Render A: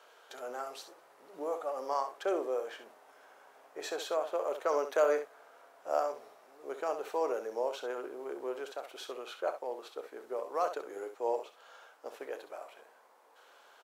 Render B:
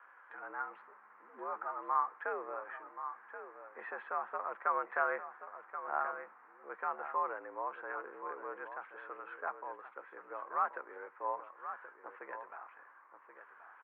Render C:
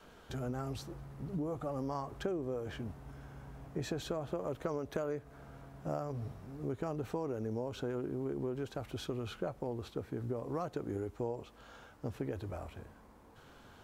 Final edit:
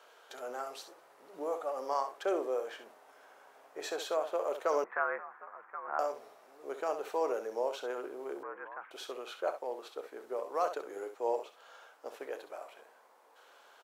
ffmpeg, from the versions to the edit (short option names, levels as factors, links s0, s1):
-filter_complex "[1:a]asplit=2[s0][s1];[0:a]asplit=3[s2][s3][s4];[s2]atrim=end=4.842[s5];[s0]atrim=start=4.838:end=5.992[s6];[s3]atrim=start=5.988:end=8.432[s7];[s1]atrim=start=8.428:end=8.912[s8];[s4]atrim=start=8.908[s9];[s5][s6]acrossfade=d=0.004:c1=hsin:c2=hsin[s10];[s10][s7]acrossfade=d=0.004:c1=hsin:c2=hsin[s11];[s11][s8]acrossfade=d=0.004:c1=hsin:c2=hsin[s12];[s12][s9]acrossfade=d=0.004:c1=hsin:c2=hsin"